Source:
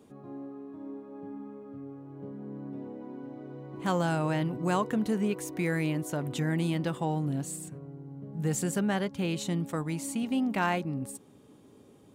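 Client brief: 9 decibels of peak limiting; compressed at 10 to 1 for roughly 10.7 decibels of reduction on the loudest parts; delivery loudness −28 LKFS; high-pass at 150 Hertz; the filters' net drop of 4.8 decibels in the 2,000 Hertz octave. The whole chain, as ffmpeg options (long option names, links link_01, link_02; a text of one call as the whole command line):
ffmpeg -i in.wav -af "highpass=150,equalizer=frequency=2000:width_type=o:gain=-6.5,acompressor=threshold=-36dB:ratio=10,volume=15dB,alimiter=limit=-18.5dB:level=0:latency=1" out.wav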